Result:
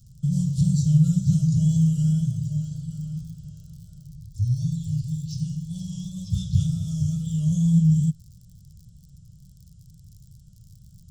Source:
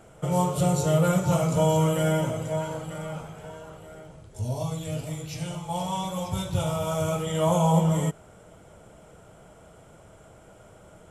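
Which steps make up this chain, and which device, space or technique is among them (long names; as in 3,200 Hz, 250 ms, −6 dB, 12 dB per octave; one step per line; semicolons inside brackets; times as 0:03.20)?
lo-fi chain (low-pass filter 3,900 Hz 12 dB per octave; tape wow and flutter; surface crackle 64 per second −45 dBFS)
0:06.27–0:06.67: parametric band 2,400 Hz +6 dB 2.6 octaves
elliptic band-stop filter 150–4,900 Hz, stop band 40 dB
level +8 dB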